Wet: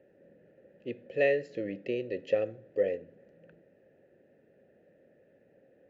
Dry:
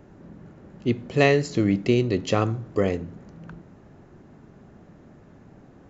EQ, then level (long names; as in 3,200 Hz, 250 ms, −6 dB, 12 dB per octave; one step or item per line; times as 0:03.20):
formant filter e
low-shelf EQ 240 Hz +7 dB
0.0 dB